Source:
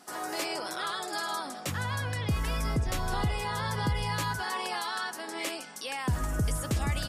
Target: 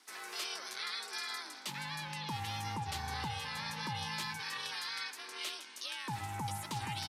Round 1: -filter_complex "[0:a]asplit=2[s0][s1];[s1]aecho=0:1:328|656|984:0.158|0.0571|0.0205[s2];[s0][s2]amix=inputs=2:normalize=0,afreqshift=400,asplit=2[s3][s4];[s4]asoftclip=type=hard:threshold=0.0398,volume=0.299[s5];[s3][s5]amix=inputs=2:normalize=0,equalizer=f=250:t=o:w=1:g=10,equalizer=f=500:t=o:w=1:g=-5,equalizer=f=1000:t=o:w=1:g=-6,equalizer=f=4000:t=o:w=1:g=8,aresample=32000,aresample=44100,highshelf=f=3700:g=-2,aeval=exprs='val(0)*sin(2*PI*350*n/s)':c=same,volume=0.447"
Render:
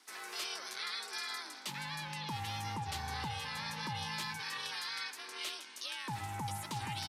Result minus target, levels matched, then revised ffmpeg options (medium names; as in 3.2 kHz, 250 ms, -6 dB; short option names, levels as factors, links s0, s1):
hard clipper: distortion +21 dB
-filter_complex "[0:a]asplit=2[s0][s1];[s1]aecho=0:1:328|656|984:0.158|0.0571|0.0205[s2];[s0][s2]amix=inputs=2:normalize=0,afreqshift=400,asplit=2[s3][s4];[s4]asoftclip=type=hard:threshold=0.0891,volume=0.299[s5];[s3][s5]amix=inputs=2:normalize=0,equalizer=f=250:t=o:w=1:g=10,equalizer=f=500:t=o:w=1:g=-5,equalizer=f=1000:t=o:w=1:g=-6,equalizer=f=4000:t=o:w=1:g=8,aresample=32000,aresample=44100,highshelf=f=3700:g=-2,aeval=exprs='val(0)*sin(2*PI*350*n/s)':c=same,volume=0.447"